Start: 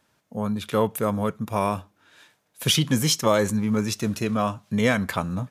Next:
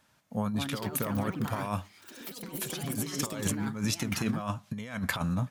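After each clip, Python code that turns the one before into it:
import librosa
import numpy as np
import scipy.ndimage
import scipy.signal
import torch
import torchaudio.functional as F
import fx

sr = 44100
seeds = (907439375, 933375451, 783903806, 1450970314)

y = fx.peak_eq(x, sr, hz=400.0, db=-7.0, octaves=0.83)
y = fx.over_compress(y, sr, threshold_db=-28.0, ratio=-0.5)
y = fx.echo_pitch(y, sr, ms=308, semitones=5, count=3, db_per_echo=-6.0)
y = F.gain(torch.from_numpy(y), -3.5).numpy()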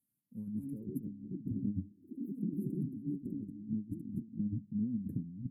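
y = fx.filter_sweep_bandpass(x, sr, from_hz=3600.0, to_hz=290.0, start_s=0.13, end_s=1.07, q=1.7)
y = fx.over_compress(y, sr, threshold_db=-43.0, ratio=-0.5)
y = scipy.signal.sosfilt(scipy.signal.cheby2(4, 50, [650.0, 5800.0], 'bandstop', fs=sr, output='sos'), y)
y = F.gain(torch.from_numpy(y), 8.5).numpy()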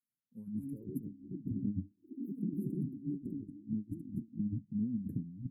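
y = fx.noise_reduce_blind(x, sr, reduce_db=13)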